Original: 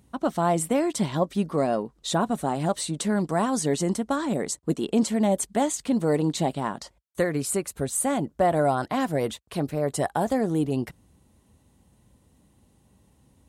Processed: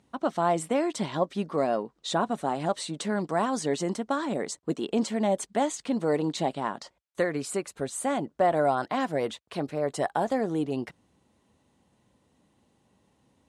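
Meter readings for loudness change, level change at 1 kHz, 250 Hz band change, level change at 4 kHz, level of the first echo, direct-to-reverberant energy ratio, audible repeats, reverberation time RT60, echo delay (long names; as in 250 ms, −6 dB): −3.0 dB, −1.0 dB, −4.5 dB, −2.0 dB, no echo audible, no reverb audible, no echo audible, no reverb audible, no echo audible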